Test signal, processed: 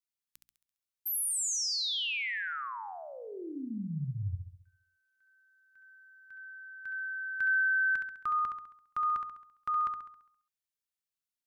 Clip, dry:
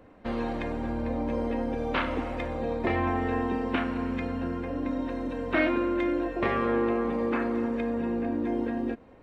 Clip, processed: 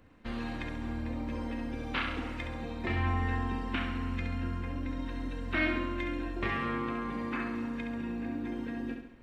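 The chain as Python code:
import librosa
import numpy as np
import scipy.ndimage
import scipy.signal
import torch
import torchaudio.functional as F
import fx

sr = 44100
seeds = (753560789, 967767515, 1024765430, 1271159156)

y = fx.peak_eq(x, sr, hz=580.0, db=-13.0, octaves=2.0)
y = fx.hum_notches(y, sr, base_hz=60, count=5)
y = fx.room_flutter(y, sr, wall_m=11.6, rt60_s=0.67)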